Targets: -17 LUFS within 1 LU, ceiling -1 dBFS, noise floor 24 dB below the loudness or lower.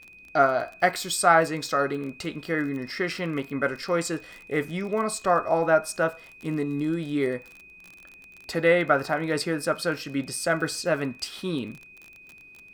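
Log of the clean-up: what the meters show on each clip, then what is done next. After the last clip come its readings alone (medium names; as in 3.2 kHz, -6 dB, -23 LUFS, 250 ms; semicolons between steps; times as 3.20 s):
tick rate 33 per s; steady tone 2.5 kHz; tone level -47 dBFS; loudness -26.0 LUFS; peak level -5.0 dBFS; loudness target -17.0 LUFS
-> de-click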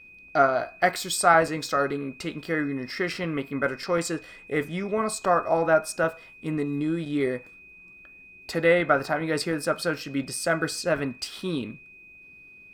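tick rate 1.3 per s; steady tone 2.5 kHz; tone level -47 dBFS
-> band-stop 2.5 kHz, Q 30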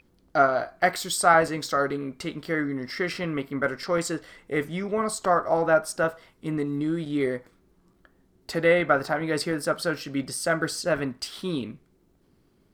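steady tone not found; loudness -26.0 LUFS; peak level -5.0 dBFS; loudness target -17.0 LUFS
-> trim +9 dB; peak limiter -1 dBFS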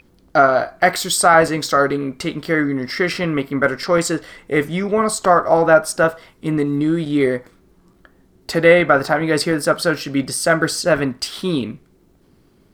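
loudness -17.5 LUFS; peak level -1.0 dBFS; noise floor -55 dBFS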